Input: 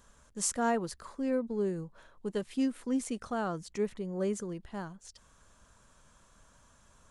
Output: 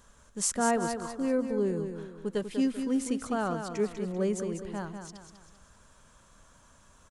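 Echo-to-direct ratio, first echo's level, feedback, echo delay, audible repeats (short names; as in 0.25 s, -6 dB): -6.5 dB, -7.5 dB, 41%, 0.195 s, 4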